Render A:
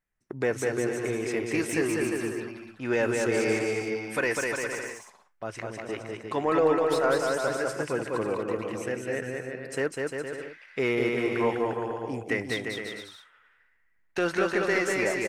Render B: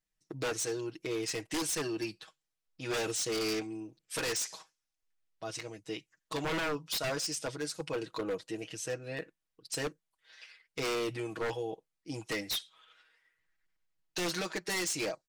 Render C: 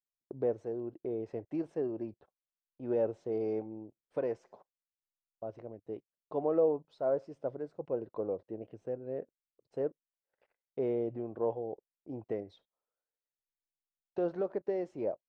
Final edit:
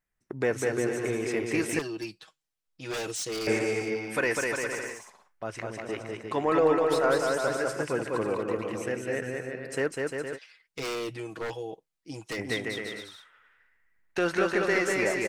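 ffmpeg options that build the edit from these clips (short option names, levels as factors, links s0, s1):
-filter_complex "[1:a]asplit=2[s0][s1];[0:a]asplit=3[s2][s3][s4];[s2]atrim=end=1.792[s5];[s0]atrim=start=1.788:end=3.472[s6];[s3]atrim=start=3.468:end=10.39[s7];[s1]atrim=start=10.35:end=12.4[s8];[s4]atrim=start=12.36[s9];[s5][s6]acrossfade=d=0.004:c1=hsin:c2=hsin[s10];[s10][s7]acrossfade=d=0.004:c1=hsin:c2=hsin[s11];[s11][s8]acrossfade=d=0.04:c1=tri:c2=tri[s12];[s12][s9]acrossfade=d=0.04:c1=tri:c2=tri"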